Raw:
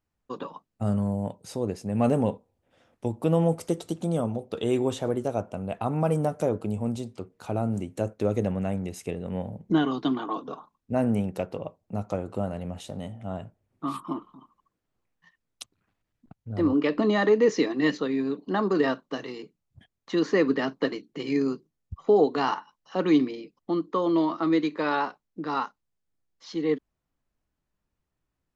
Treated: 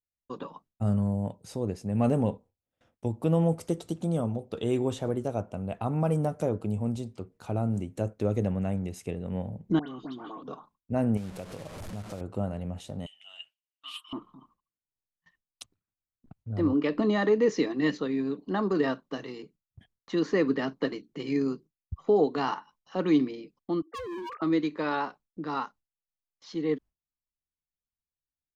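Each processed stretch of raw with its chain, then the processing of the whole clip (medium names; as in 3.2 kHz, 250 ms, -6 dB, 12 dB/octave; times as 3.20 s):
9.79–10.43 s: compression 5:1, threshold -34 dBFS + phase dispersion highs, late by 98 ms, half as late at 1.9 kHz
11.17–12.21 s: one-bit delta coder 64 kbps, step -33 dBFS + compression 2:1, threshold -37 dBFS
13.06–14.13 s: resonant high-pass 2.9 kHz, resonance Q 12 + comb 7.5 ms, depth 40%
23.82–24.42 s: formants replaced by sine waves + high-pass 440 Hz + overload inside the chain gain 32 dB
whole clip: gate with hold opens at -50 dBFS; bass shelf 160 Hz +7.5 dB; trim -4 dB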